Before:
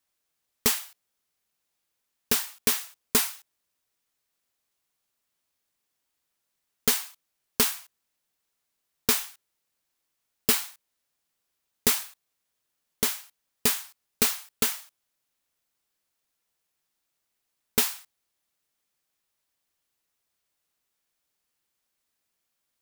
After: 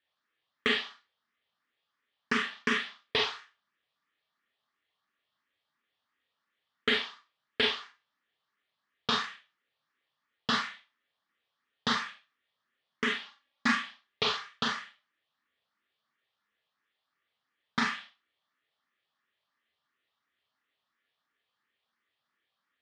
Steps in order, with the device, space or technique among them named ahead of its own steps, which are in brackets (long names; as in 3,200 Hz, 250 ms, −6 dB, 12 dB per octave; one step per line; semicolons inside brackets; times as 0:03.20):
0:13.21–0:13.72: comb filter 3.6 ms, depth 82%
barber-pole phaser into a guitar amplifier (frequency shifter mixed with the dry sound +2.9 Hz; soft clipping −14 dBFS, distortion −19 dB; loudspeaker in its box 100–4,100 Hz, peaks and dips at 1,200 Hz +8 dB, 1,800 Hz +9 dB, 3,300 Hz +6 dB)
four-comb reverb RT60 0.3 s, combs from 27 ms, DRR 1 dB